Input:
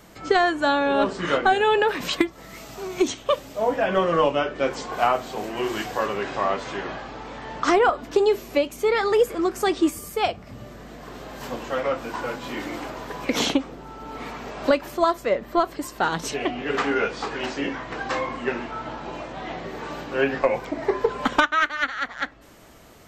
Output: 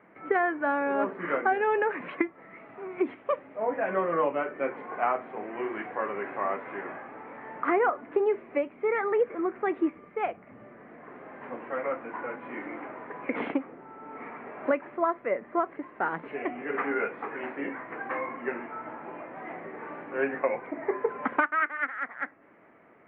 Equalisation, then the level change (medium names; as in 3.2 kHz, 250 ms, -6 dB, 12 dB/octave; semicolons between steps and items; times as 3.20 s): high-pass 240 Hz 12 dB/octave; elliptic low-pass 2.2 kHz, stop band 60 dB; peaking EQ 730 Hz -3 dB 1.6 oct; -3.5 dB